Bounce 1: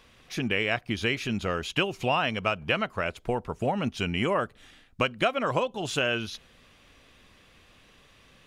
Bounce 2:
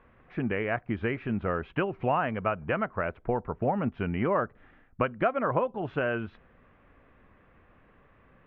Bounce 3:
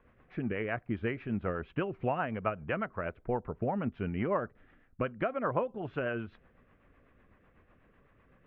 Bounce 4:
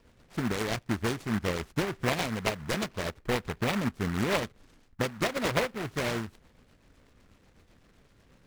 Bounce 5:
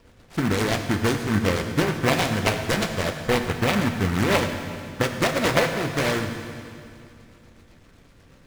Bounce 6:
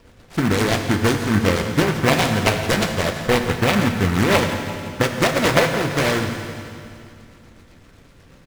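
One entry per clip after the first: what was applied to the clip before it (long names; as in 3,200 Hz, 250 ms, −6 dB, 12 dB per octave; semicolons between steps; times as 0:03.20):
low-pass filter 1,800 Hz 24 dB per octave
rotating-speaker cabinet horn 8 Hz; level −2.5 dB
in parallel at −4 dB: sample-rate reduction 1,700 Hz, jitter 0%; on the sum: short delay modulated by noise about 1,300 Hz, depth 0.21 ms
convolution reverb RT60 2.5 s, pre-delay 5 ms, DRR 5 dB; level +6.5 dB
repeating echo 170 ms, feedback 58%, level −14.5 dB; level +4 dB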